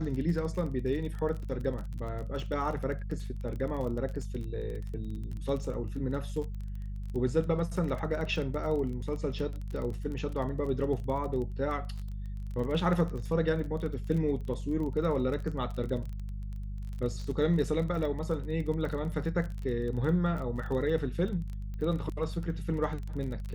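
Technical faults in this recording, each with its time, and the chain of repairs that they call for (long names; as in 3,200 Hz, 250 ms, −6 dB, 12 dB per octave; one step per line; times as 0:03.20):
surface crackle 25 per second −36 dBFS
mains hum 50 Hz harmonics 4 −37 dBFS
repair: click removal
hum removal 50 Hz, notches 4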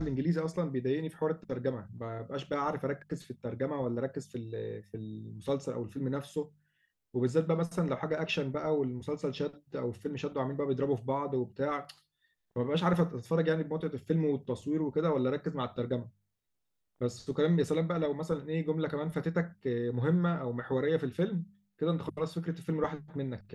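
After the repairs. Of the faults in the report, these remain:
none of them is left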